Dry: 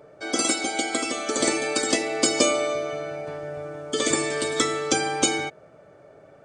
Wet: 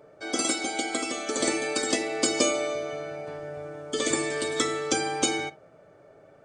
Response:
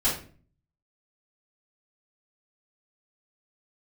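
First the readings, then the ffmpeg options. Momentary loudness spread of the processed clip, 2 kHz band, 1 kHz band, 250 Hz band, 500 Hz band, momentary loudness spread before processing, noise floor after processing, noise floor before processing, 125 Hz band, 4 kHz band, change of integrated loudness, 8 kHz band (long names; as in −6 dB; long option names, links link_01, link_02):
12 LU, −3.0 dB, −3.5 dB, −3.0 dB, −3.0 dB, 12 LU, −55 dBFS, −51 dBFS, −4.0 dB, −3.5 dB, −3.0 dB, −3.5 dB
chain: -filter_complex "[0:a]asplit=2[link_01][link_02];[1:a]atrim=start_sample=2205,atrim=end_sample=3528[link_03];[link_02][link_03]afir=irnorm=-1:irlink=0,volume=-24dB[link_04];[link_01][link_04]amix=inputs=2:normalize=0,volume=-4dB"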